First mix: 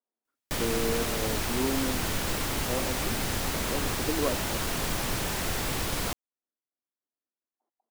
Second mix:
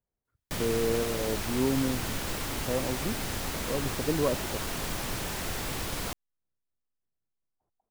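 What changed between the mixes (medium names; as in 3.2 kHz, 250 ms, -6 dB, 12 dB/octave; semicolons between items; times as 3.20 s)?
speech: remove rippled Chebyshev high-pass 220 Hz, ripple 3 dB; background -3.5 dB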